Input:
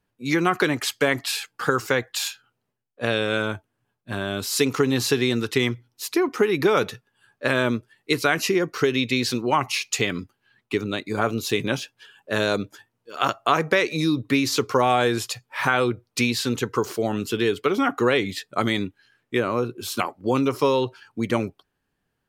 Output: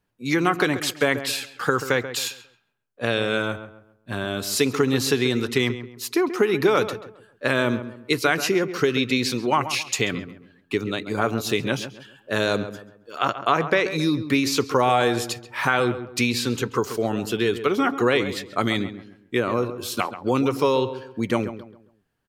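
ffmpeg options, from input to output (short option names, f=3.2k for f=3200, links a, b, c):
-filter_complex "[0:a]asettb=1/sr,asplit=3[a][b][c];[a]atrim=end=13.184[d];[b]atrim=start=13.18:end=13.86,asetpts=PTS-STARTPTS,afade=t=in:d=0.004:c=qsin,afade=t=out:st=0.676:d=0.004:c=qsin,highshelf=f=6.1k:g=-10.5[e];[c]atrim=start=13.856[f];[d][e]acrossfade=d=0.004:c1=hsin:c2=qsin[g];[g][f]acrossfade=d=0.004:c1=qsin:c2=hsin,asplit=2[h][i];[i]adelay=135,lowpass=f=1.9k:p=1,volume=-11dB,asplit=2[j][k];[k]adelay=135,lowpass=f=1.9k:p=1,volume=0.35,asplit=2[l][m];[m]adelay=135,lowpass=f=1.9k:p=1,volume=0.35,asplit=2[n][o];[o]adelay=135,lowpass=f=1.9k:p=1,volume=0.35[p];[h][j][l][n][p]amix=inputs=5:normalize=0"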